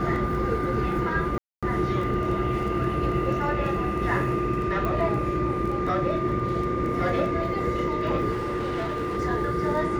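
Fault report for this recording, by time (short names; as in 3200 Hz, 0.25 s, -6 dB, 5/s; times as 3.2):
crackle 13/s
tone 1200 Hz -30 dBFS
1.38–1.63 gap 0.246 s
4.85 pop -17 dBFS
8.31–9.18 clipped -25 dBFS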